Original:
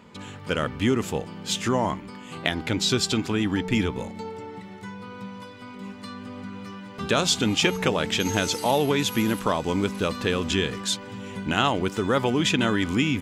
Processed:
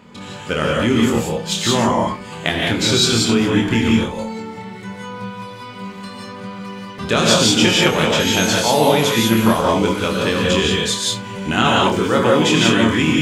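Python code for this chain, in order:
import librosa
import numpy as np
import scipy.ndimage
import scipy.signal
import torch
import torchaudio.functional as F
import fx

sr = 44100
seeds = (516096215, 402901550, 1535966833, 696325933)

p1 = x + fx.room_early_taps(x, sr, ms=(26, 72), db=(-5.0, -17.5), dry=0)
p2 = fx.rev_gated(p1, sr, seeds[0], gate_ms=210, shape='rising', drr_db=-2.0)
y = F.gain(torch.from_numpy(p2), 3.5).numpy()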